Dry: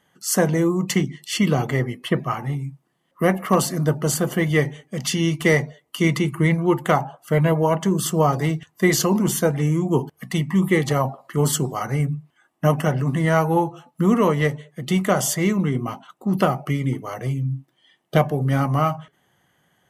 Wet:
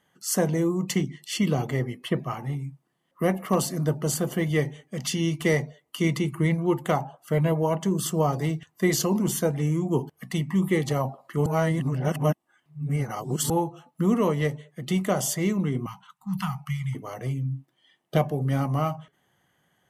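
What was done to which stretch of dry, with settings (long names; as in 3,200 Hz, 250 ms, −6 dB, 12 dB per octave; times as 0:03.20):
0:11.46–0:13.50: reverse
0:15.86–0:16.95: elliptic band-stop filter 180–910 Hz
whole clip: dynamic equaliser 1,500 Hz, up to −5 dB, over −36 dBFS, Q 1.2; level −4.5 dB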